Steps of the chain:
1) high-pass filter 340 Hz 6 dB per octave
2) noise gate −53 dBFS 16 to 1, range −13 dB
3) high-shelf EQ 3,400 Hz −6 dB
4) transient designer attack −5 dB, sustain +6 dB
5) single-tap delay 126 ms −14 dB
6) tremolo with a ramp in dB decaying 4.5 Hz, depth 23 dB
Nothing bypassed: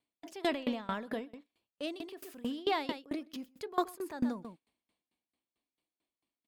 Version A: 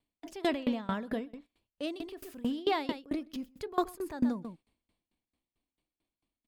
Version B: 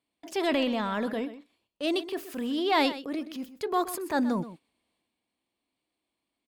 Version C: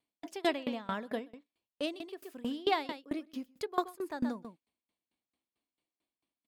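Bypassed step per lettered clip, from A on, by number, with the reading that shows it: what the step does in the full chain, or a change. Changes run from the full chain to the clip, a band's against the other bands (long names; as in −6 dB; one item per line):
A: 1, 125 Hz band +5.0 dB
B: 6, change in momentary loudness spread −2 LU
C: 4, 125 Hz band −2.0 dB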